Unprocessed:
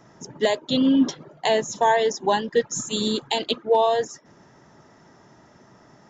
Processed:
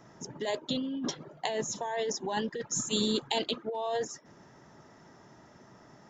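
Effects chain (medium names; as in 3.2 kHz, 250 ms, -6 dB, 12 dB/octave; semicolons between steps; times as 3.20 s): compressor with a negative ratio -24 dBFS, ratio -1; trim -7 dB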